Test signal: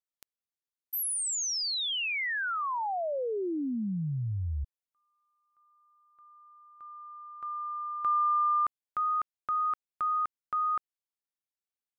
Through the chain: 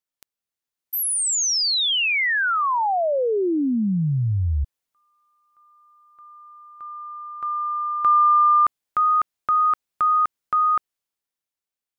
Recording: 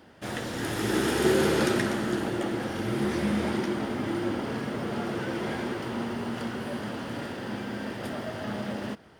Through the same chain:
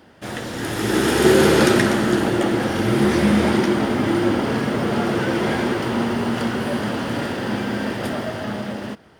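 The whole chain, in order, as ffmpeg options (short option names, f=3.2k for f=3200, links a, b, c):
-af "dynaudnorm=f=120:g=17:m=6.5dB,volume=4dB"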